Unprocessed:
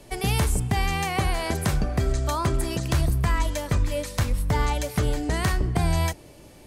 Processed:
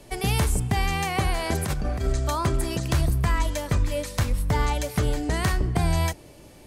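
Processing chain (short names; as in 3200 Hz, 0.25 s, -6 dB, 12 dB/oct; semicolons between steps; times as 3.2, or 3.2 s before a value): 1.52–2.08 negative-ratio compressor -24 dBFS, ratio -0.5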